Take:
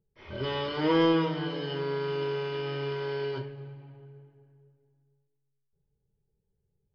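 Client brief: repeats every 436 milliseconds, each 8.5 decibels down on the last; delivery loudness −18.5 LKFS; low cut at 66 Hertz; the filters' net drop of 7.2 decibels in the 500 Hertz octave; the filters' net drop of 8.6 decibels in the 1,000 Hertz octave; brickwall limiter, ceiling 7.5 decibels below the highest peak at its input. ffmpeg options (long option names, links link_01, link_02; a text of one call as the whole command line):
ffmpeg -i in.wav -af "highpass=66,equalizer=frequency=500:width_type=o:gain=-7.5,equalizer=frequency=1000:width_type=o:gain=-8,alimiter=level_in=3dB:limit=-24dB:level=0:latency=1,volume=-3dB,aecho=1:1:436|872|1308|1744:0.376|0.143|0.0543|0.0206,volume=18.5dB" out.wav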